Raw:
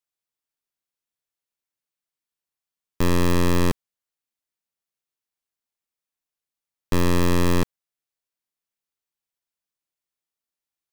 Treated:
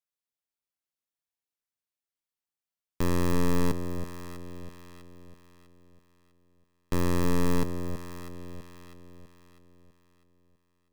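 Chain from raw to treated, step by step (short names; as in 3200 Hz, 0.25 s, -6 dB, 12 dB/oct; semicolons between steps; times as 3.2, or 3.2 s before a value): echo with dull and thin repeats by turns 0.325 s, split 820 Hz, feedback 61%, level -7 dB; dynamic EQ 3100 Hz, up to -5 dB, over -46 dBFS, Q 1.1; gain -6 dB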